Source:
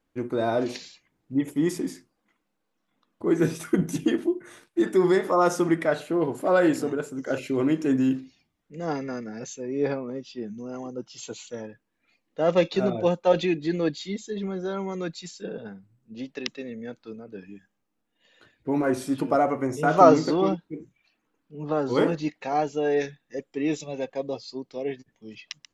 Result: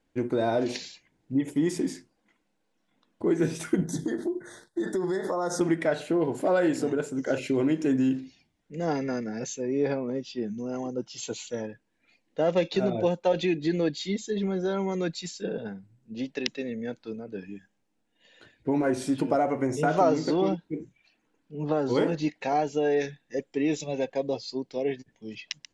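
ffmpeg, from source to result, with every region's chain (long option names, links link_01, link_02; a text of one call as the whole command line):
ffmpeg -i in.wav -filter_complex "[0:a]asettb=1/sr,asplit=3[link_01][link_02][link_03];[link_01]atrim=end=3.844[link_04];[link_02]atrim=start=3.84:end=5.61,asetpts=PTS-STARTPTS,afade=type=in:duration=0.004:curve=qsin,afade=type=out:start_time=1.766:duration=0.004:curve=qsin,equalizer=frequency=280:width=4:gain=-5,acompressor=threshold=-27dB:ratio=6:attack=3.2:release=140:knee=1:detection=peak,asuperstop=centerf=2600:order=8:qfactor=1.7[link_05];[link_03]atrim=start=5.606[link_06];[link_04][link_05]acrossfade=duration=0.004:curve1=hsin:curve2=qsin[link_07];[link_07][link_06]acrossfade=duration=0.004:curve1=qsin:curve2=hsin,lowpass=frequency=10000:width=0.5412,lowpass=frequency=10000:width=1.3066,equalizer=frequency=1200:width_type=o:width=0.26:gain=-8.5,acompressor=threshold=-26dB:ratio=2.5,volume=3dB" out.wav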